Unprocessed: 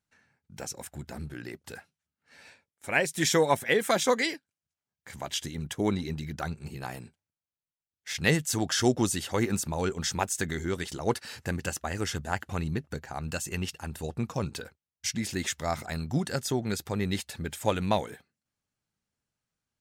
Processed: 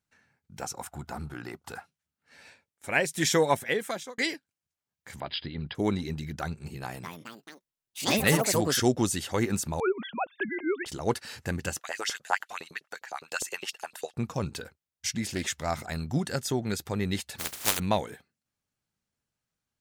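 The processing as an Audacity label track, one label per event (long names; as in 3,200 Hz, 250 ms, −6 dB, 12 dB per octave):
0.620000	1.860000	gain on a spectral selection 670–1,500 Hz +9 dB
3.510000	4.180000	fade out
5.200000	5.750000	linear-phase brick-wall low-pass 5,200 Hz
6.810000	9.170000	delay with pitch and tempo change per echo 220 ms, each echo +5 semitones, echoes 3
9.800000	10.860000	three sine waves on the formant tracks
11.790000	14.170000	auto-filter high-pass saw up 9.8 Hz 430–5,100 Hz
15.270000	15.700000	highs frequency-modulated by the lows depth 0.21 ms
17.380000	17.780000	compressing power law on the bin magnitudes exponent 0.12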